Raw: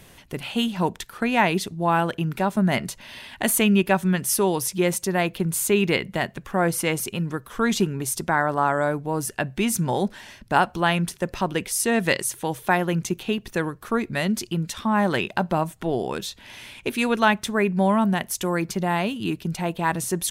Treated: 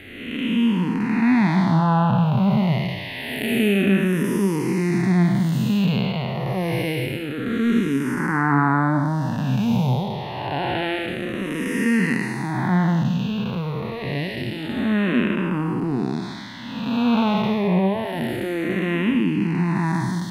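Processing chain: spectral blur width 411 ms; dynamic bell 1.5 kHz, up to -5 dB, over -41 dBFS, Q 0.74; flange 0.67 Hz, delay 9.8 ms, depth 7.4 ms, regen +73%; ten-band graphic EQ 125 Hz +9 dB, 250 Hz +11 dB, 1 kHz +7 dB, 2 kHz +11 dB, 4 kHz +7 dB, 8 kHz -11 dB; barber-pole phaser -0.27 Hz; trim +6.5 dB

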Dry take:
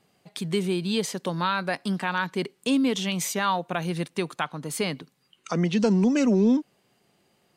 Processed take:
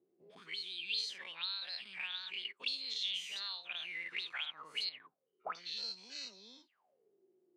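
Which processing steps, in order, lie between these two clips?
every event in the spectrogram widened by 120 ms; 4.89–5.55 s: distance through air 460 m; auto-wah 350–4200 Hz, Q 15, up, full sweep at -18 dBFS; trim +1 dB

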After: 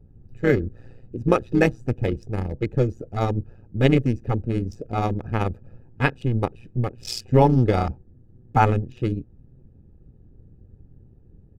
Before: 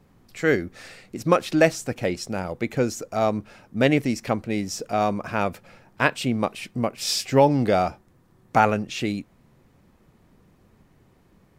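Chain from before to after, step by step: local Wiener filter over 41 samples; tone controls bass +13 dB, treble 0 dB; comb 2.4 ms, depth 62%; AM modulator 120 Hz, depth 55%

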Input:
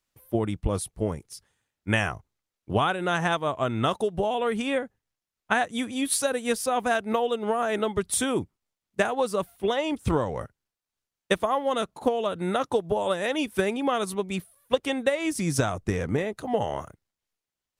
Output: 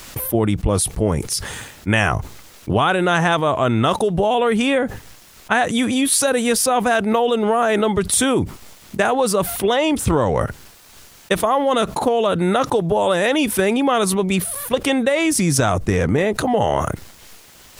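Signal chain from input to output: level flattener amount 70%; trim +3.5 dB

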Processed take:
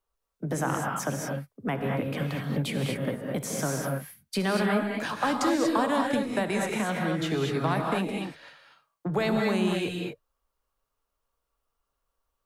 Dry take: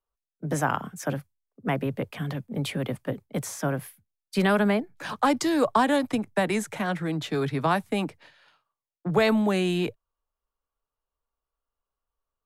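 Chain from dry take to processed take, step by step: compression 2:1, threshold -37 dBFS, peak gain reduction 11 dB; gated-style reverb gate 260 ms rising, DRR 0 dB; trim +4.5 dB

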